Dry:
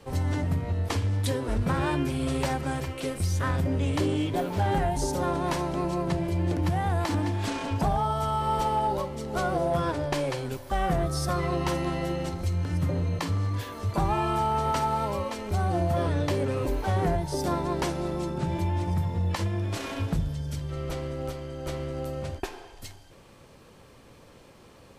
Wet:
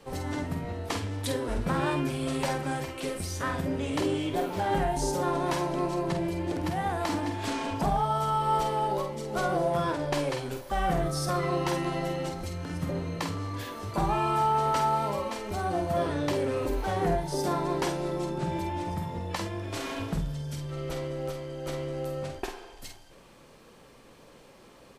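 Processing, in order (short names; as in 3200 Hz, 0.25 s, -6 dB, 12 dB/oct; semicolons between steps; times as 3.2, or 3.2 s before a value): bell 83 Hz -10.5 dB 1.1 oct; doubler 48 ms -6.5 dB; gain -1 dB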